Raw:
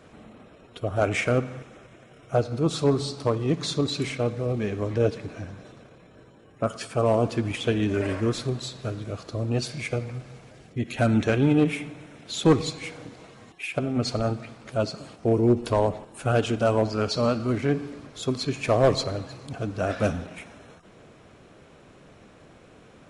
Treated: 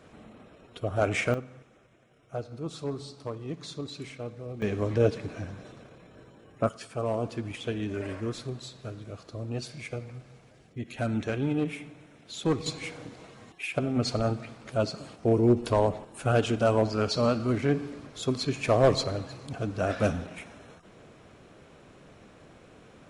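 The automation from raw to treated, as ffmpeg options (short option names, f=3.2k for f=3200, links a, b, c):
-af "asetnsamples=n=441:p=0,asendcmd='1.34 volume volume -12dB;4.62 volume volume -0.5dB;6.69 volume volume -8dB;12.66 volume volume -1.5dB',volume=-2.5dB"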